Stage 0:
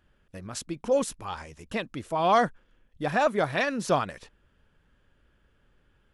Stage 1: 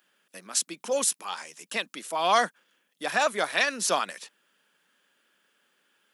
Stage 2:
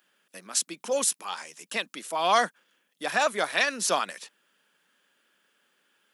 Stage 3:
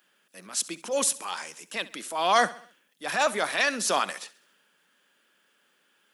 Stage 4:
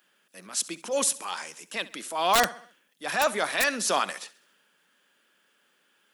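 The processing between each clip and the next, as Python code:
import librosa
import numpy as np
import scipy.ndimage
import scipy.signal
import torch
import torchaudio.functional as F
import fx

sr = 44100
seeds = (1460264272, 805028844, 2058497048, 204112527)

y1 = scipy.signal.sosfilt(scipy.signal.butter(8, 170.0, 'highpass', fs=sr, output='sos'), x)
y1 = fx.tilt_eq(y1, sr, slope=4.0)
y2 = y1
y3 = fx.transient(y2, sr, attack_db=-7, sustain_db=2)
y3 = fx.echo_feedback(y3, sr, ms=67, feedback_pct=48, wet_db=-18.5)
y3 = y3 * librosa.db_to_amplitude(2.0)
y4 = (np.mod(10.0 ** (11.5 / 20.0) * y3 + 1.0, 2.0) - 1.0) / 10.0 ** (11.5 / 20.0)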